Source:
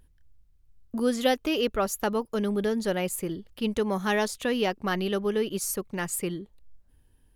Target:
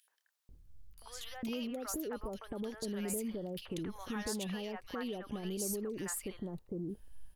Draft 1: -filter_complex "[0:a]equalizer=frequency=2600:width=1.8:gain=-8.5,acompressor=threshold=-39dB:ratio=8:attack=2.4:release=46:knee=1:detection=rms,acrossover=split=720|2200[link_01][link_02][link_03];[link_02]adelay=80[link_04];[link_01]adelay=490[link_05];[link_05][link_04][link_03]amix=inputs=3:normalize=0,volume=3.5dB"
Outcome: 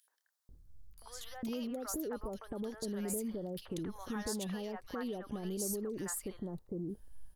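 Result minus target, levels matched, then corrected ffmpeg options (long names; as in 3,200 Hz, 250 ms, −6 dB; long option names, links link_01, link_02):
2,000 Hz band −3.0 dB
-filter_complex "[0:a]acompressor=threshold=-39dB:ratio=8:attack=2.4:release=46:knee=1:detection=rms,acrossover=split=720|2200[link_01][link_02][link_03];[link_02]adelay=80[link_04];[link_01]adelay=490[link_05];[link_05][link_04][link_03]amix=inputs=3:normalize=0,volume=3.5dB"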